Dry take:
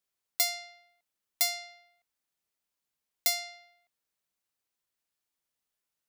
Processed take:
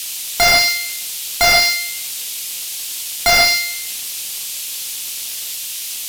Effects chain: crackle 360 per s -56 dBFS; Schroeder reverb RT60 0.62 s, combs from 27 ms, DRR 2.5 dB; band noise 2.6–15 kHz -53 dBFS; loudness maximiser +20.5 dB; slew-rate limiter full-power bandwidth 590 Hz; trim +6 dB

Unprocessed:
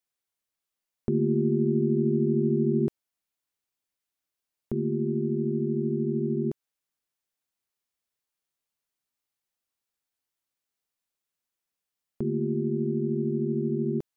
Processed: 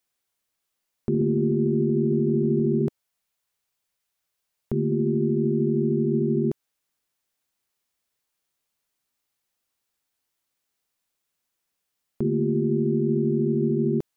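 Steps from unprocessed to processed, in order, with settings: 2.81–4.92 s: peaking EQ 290 Hz -10.5 dB 0.43 oct; peak limiter -22 dBFS, peak gain reduction 7.5 dB; trim +7 dB

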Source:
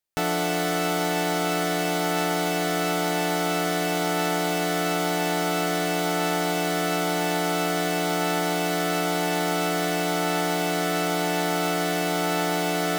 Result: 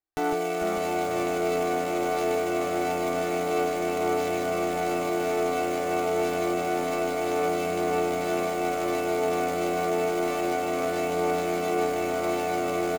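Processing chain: median filter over 15 samples; on a send: delay 155 ms -4.5 dB; on the sum: flange 0.26 Hz, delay 6.3 ms, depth 3.5 ms, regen +63%; comb 2.6 ms, depth 73%; frequency-shifting echo 443 ms, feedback 31%, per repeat -87 Hz, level -7.5 dB

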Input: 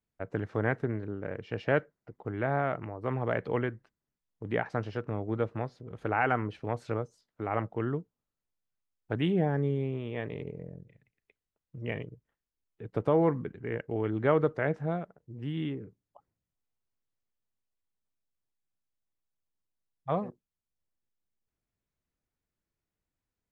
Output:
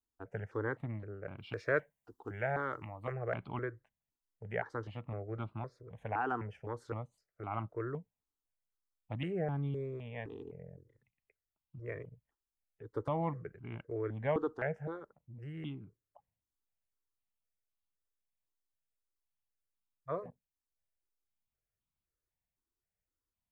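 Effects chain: 1.38–3.12 s: treble shelf 2.3 kHz +10.5 dB; stepped phaser 3.9 Hz 580–1800 Hz; trim -4 dB

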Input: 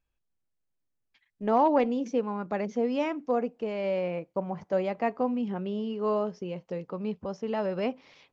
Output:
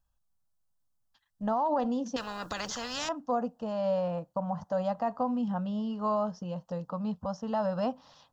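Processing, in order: static phaser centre 930 Hz, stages 4; peak limiter -26 dBFS, peak gain reduction 10.5 dB; 2.16–3.09 s: spectrum-flattening compressor 4:1; trim +5 dB

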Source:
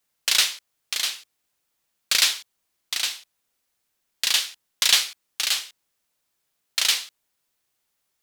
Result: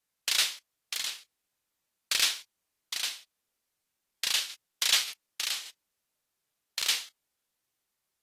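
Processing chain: 5.50–6.80 s: compression, threshold -22 dBFS, peak gain reduction 4 dB; crackling interface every 0.58 s, samples 2048, repeat, from 0.97 s; trim -7 dB; AAC 48 kbps 32 kHz

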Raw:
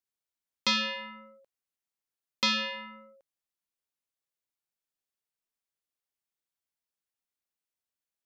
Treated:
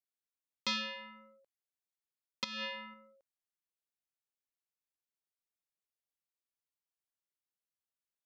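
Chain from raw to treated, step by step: 2.44–2.94 s: compressor with a negative ratio -33 dBFS, ratio -1; trim -8 dB

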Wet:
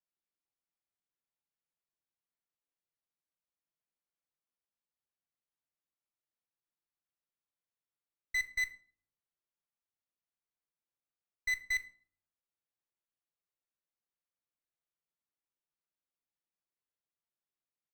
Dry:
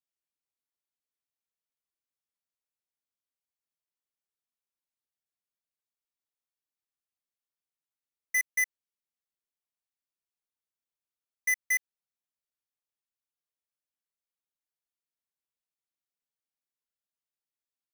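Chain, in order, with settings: low-pass 1.9 kHz 6 dB/octave; simulated room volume 540 m³, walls furnished, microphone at 0.81 m; sliding maximum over 3 samples; trim -1.5 dB

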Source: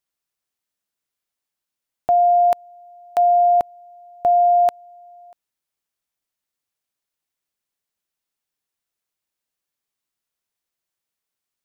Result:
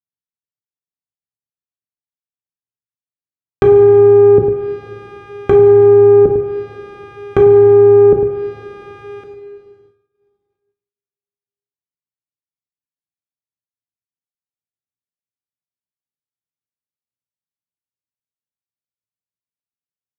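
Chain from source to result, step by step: median filter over 41 samples; speed mistake 78 rpm record played at 45 rpm; on a send: delay 100 ms -9.5 dB; on the sum: half-wave rectifier; distance through air 67 m; low-pass that closes with the level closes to 440 Hz, closed at -26 dBFS; peaking EQ 120 Hz +9.5 dB 0.75 oct; two-slope reverb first 0.47 s, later 3.8 s, from -16 dB, DRR 3 dB; expander -59 dBFS; high-pass 73 Hz; loudness maximiser +22.5 dB; trim -1 dB

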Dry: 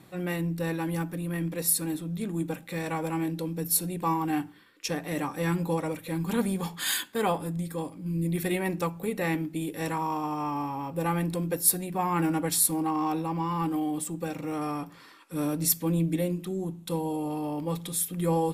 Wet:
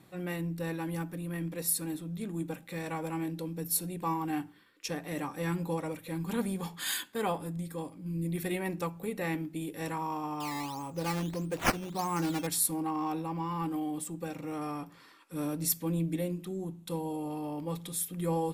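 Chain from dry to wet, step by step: 10.40–12.47 s: decimation with a swept rate 10×, swing 100% 1.6 Hz; trim -5 dB

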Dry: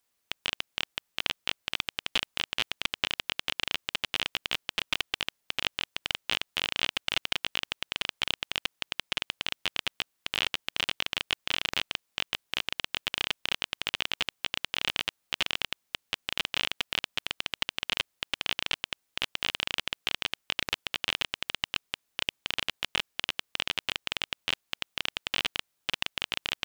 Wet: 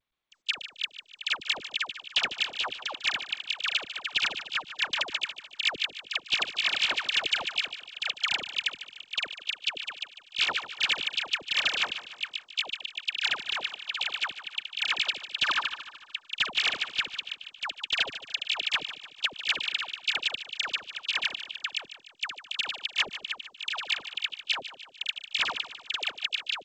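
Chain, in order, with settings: gate -33 dBFS, range -40 dB; band-stop 2 kHz, Q 7.3; 15.24–15.95 s: time-frequency box 820–1800 Hz +10 dB; peaking EQ 3.4 kHz +8.5 dB 2.1 oct; 20.71–22.86 s: compressor with a negative ratio -28 dBFS, ratio -1; phase dispersion lows, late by 93 ms, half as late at 1 kHz; overdrive pedal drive 23 dB, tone 4.2 kHz, clips at -8 dBFS; tremolo 12 Hz, depth 67%; feedback delay 149 ms, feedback 49%, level -13 dB; trim -6 dB; G.722 64 kbps 16 kHz

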